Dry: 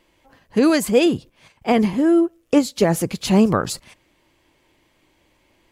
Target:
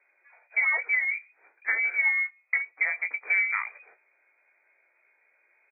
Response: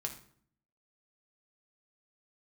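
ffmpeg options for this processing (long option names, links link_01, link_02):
-filter_complex "[0:a]asplit=2[link_01][link_02];[link_02]aeval=exprs='sgn(val(0))*max(abs(val(0))-0.0299,0)':channel_layout=same,volume=-12dB[link_03];[link_01][link_03]amix=inputs=2:normalize=0,acompressor=threshold=-18dB:ratio=6,lowpass=frequency=2100:width_type=q:width=0.5098,lowpass=frequency=2100:width_type=q:width=0.6013,lowpass=frequency=2100:width_type=q:width=0.9,lowpass=frequency=2100:width_type=q:width=2.563,afreqshift=-2500,highpass=frequency=430:width=0.5412,highpass=frequency=430:width=1.3066,aecho=1:1:17|33:0.473|0.158,volume=-5.5dB"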